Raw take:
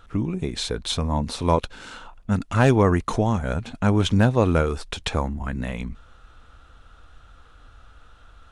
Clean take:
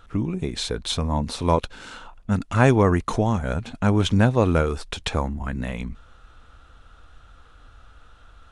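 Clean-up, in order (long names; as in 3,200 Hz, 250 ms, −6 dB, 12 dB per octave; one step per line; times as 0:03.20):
clipped peaks rebuilt −6 dBFS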